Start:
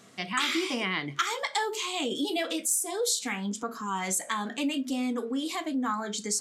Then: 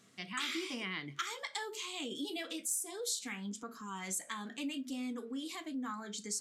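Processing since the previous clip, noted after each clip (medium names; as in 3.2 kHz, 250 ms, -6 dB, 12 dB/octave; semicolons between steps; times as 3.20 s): peaking EQ 710 Hz -6.5 dB 1.4 oct; trim -8.5 dB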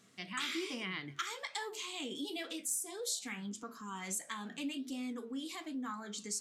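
flange 1.2 Hz, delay 4.4 ms, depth 7.6 ms, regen +90%; trim +4 dB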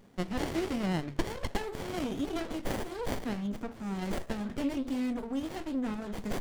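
sliding maximum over 33 samples; trim +8.5 dB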